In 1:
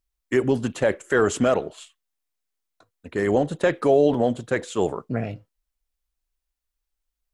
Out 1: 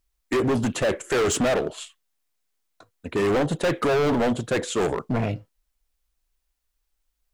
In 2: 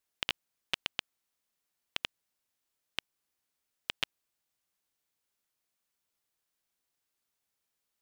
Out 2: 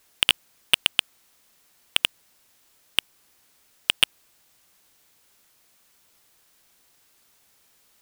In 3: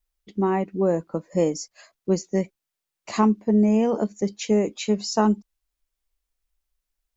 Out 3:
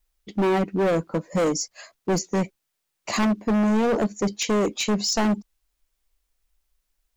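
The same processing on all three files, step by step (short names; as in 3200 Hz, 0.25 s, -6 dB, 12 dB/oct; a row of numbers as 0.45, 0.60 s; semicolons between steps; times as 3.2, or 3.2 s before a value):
overloaded stage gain 25 dB; match loudness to -24 LUFS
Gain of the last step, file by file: +6.0, +22.0, +6.5 dB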